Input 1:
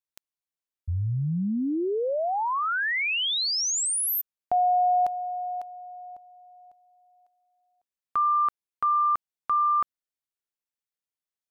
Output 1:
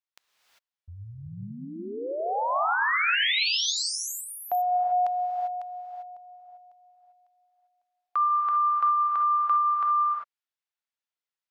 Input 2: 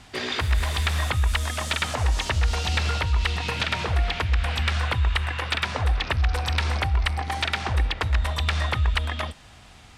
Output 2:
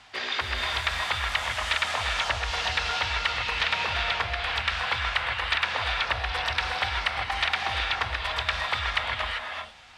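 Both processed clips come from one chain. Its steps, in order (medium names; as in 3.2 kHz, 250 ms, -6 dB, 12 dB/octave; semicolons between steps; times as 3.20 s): three-band isolator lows -15 dB, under 590 Hz, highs -13 dB, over 5.6 kHz; gated-style reverb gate 420 ms rising, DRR 1 dB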